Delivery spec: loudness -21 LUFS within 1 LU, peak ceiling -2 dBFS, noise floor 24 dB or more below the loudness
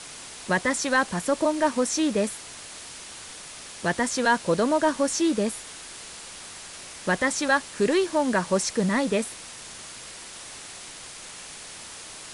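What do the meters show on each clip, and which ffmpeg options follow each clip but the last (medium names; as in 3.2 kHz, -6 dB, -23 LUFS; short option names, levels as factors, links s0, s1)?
noise floor -42 dBFS; noise floor target -49 dBFS; loudness -24.5 LUFS; peak level -10.5 dBFS; loudness target -21.0 LUFS
-> -af "afftdn=nr=7:nf=-42"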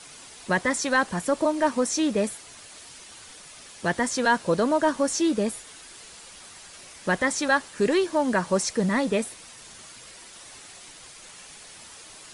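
noise floor -46 dBFS; noise floor target -49 dBFS
-> -af "afftdn=nr=6:nf=-46"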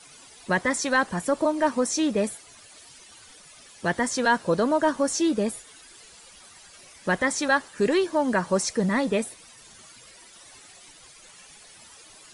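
noise floor -50 dBFS; loudness -24.5 LUFS; peak level -11.0 dBFS; loudness target -21.0 LUFS
-> -af "volume=1.5"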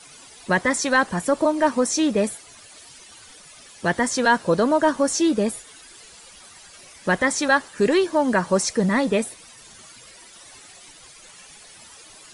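loudness -21.0 LUFS; peak level -7.5 dBFS; noise floor -47 dBFS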